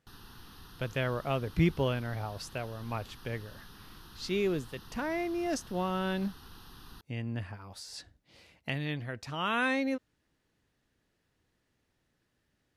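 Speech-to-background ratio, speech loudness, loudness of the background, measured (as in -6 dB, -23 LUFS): 18.0 dB, -34.0 LUFS, -52.0 LUFS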